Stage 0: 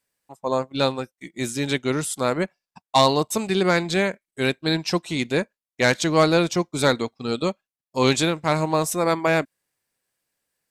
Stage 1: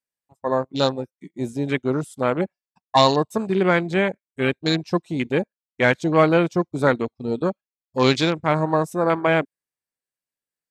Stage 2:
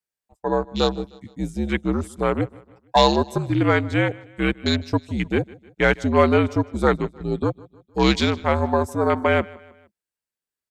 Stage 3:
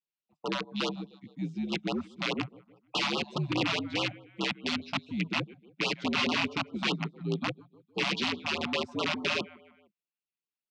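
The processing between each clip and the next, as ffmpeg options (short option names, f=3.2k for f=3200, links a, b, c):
-af "afwtdn=0.0398,volume=1.5dB"
-af "afreqshift=-69,aecho=1:1:154|308|462:0.0794|0.0373|0.0175"
-af "aeval=exprs='(mod(4.73*val(0)+1,2)-1)/4.73':c=same,highpass=f=140:w=0.5412,highpass=f=140:w=1.3066,equalizer=f=150:t=q:w=4:g=6,equalizer=f=590:t=q:w=4:g=-4,equalizer=f=850:t=q:w=4:g=-3,equalizer=f=1.7k:t=q:w=4:g=-6,equalizer=f=2.6k:t=q:w=4:g=7,lowpass=f=4.7k:w=0.5412,lowpass=f=4.7k:w=1.3066,afftfilt=real='re*(1-between(b*sr/1024,370*pow(2000/370,0.5+0.5*sin(2*PI*4.8*pts/sr))/1.41,370*pow(2000/370,0.5+0.5*sin(2*PI*4.8*pts/sr))*1.41))':imag='im*(1-between(b*sr/1024,370*pow(2000/370,0.5+0.5*sin(2*PI*4.8*pts/sr))/1.41,370*pow(2000/370,0.5+0.5*sin(2*PI*4.8*pts/sr))*1.41))':win_size=1024:overlap=0.75,volume=-7dB"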